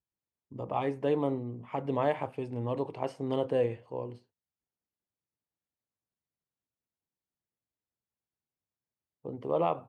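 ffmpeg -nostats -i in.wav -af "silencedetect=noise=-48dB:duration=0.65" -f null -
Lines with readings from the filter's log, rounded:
silence_start: 4.18
silence_end: 9.25 | silence_duration: 5.07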